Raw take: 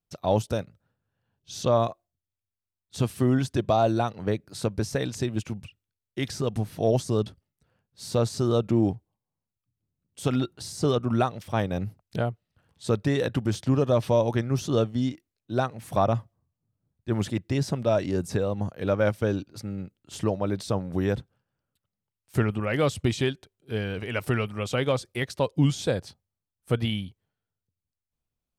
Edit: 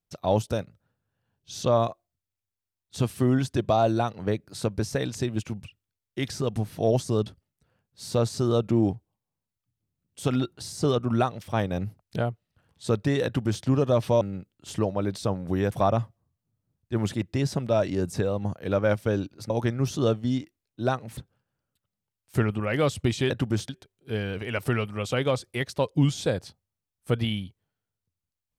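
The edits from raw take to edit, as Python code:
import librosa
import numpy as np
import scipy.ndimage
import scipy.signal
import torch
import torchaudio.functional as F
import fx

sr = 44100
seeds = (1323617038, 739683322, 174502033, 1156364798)

y = fx.edit(x, sr, fx.duplicate(start_s=13.25, length_s=0.39, to_s=23.3),
    fx.swap(start_s=14.21, length_s=1.67, other_s=19.66, other_length_s=1.51), tone=tone)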